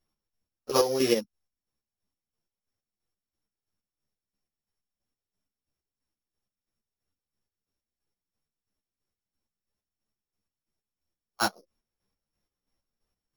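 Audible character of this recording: a buzz of ramps at a fixed pitch in blocks of 8 samples; chopped level 3 Hz, depth 60%, duty 40%; a shimmering, thickened sound

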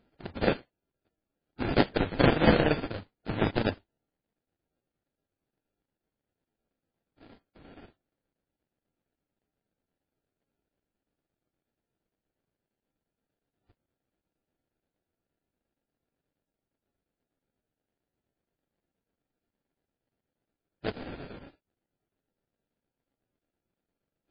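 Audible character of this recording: a buzz of ramps at a fixed pitch in blocks of 32 samples; chopped level 8.5 Hz, depth 65%, duty 80%; aliases and images of a low sample rate 1.1 kHz, jitter 20%; MP3

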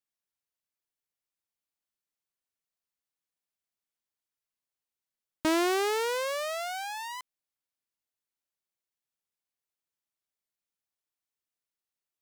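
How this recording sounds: noise floor -92 dBFS; spectral tilt -2.0 dB/octave

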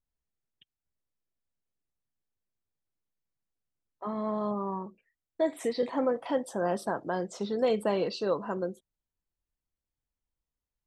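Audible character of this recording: noise floor -91 dBFS; spectral tilt -5.0 dB/octave

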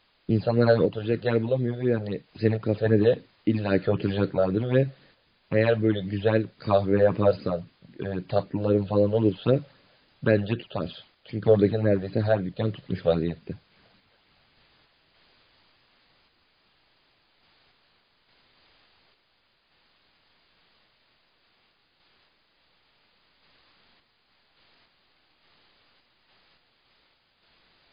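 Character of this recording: phasing stages 8, 3.8 Hz, lowest notch 280–1100 Hz; a quantiser's noise floor 10-bit, dither triangular; random-step tremolo; MP3

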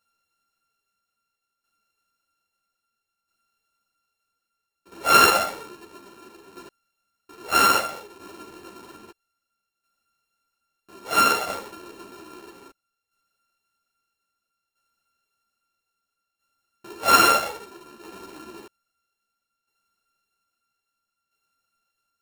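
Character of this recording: a buzz of ramps at a fixed pitch in blocks of 32 samples; tremolo saw down 0.61 Hz, depth 60%; a shimmering, thickened sound

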